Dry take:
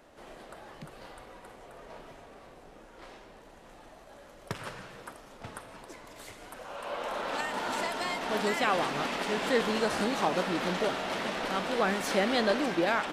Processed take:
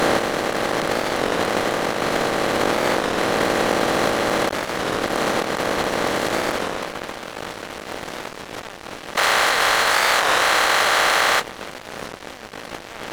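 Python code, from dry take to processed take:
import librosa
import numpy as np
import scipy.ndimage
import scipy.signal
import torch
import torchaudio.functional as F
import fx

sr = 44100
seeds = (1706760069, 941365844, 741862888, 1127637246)

y = fx.bin_compress(x, sr, power=0.2)
y = fx.highpass(y, sr, hz=1000.0, slope=12, at=(9.16, 11.41))
y = fx.over_compress(y, sr, threshold_db=-24.0, ratio=-0.5)
y = np.sign(y) * np.maximum(np.abs(y) - 10.0 ** (-29.5 / 20.0), 0.0)
y = fx.record_warp(y, sr, rpm=33.33, depth_cents=160.0)
y = F.gain(torch.from_numpy(y), 6.5).numpy()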